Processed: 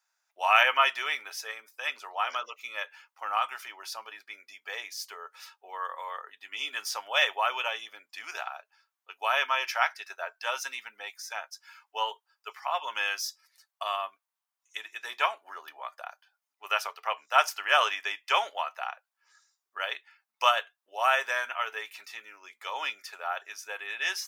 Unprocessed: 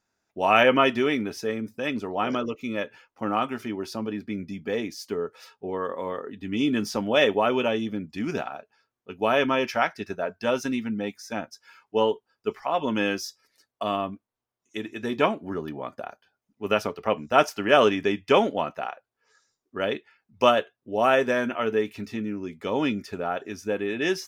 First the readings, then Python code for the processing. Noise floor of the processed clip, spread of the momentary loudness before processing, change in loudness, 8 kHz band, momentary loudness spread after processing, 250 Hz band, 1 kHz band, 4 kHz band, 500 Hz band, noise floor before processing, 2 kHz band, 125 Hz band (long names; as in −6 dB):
below −85 dBFS, 14 LU, −4.0 dB, +2.0 dB, 18 LU, below −35 dB, −2.0 dB, +0.5 dB, −14.0 dB, below −85 dBFS, 0.0 dB, below −40 dB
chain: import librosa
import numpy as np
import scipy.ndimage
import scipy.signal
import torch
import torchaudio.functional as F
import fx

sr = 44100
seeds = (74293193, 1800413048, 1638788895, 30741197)

y = scipy.signal.sosfilt(scipy.signal.butter(4, 840.0, 'highpass', fs=sr, output='sos'), x)
y = fx.high_shelf(y, sr, hz=8500.0, db=5.5)